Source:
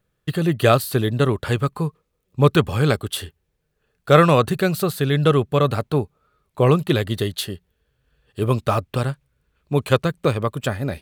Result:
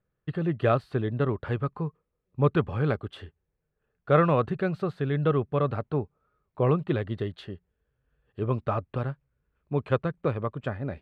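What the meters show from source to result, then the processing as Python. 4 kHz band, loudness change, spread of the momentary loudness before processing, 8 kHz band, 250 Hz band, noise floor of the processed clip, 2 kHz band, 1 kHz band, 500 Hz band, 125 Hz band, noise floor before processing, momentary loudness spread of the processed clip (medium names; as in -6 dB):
-18.5 dB, -7.5 dB, 11 LU, under -30 dB, -7.5 dB, -81 dBFS, -10.0 dB, -8.0 dB, -7.5 dB, -7.5 dB, -73 dBFS, 11 LU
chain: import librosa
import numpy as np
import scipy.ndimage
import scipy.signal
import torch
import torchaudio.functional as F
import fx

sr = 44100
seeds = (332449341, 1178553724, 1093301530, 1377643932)

y = scipy.signal.sosfilt(scipy.signal.butter(2, 1900.0, 'lowpass', fs=sr, output='sos'), x)
y = F.gain(torch.from_numpy(y), -7.5).numpy()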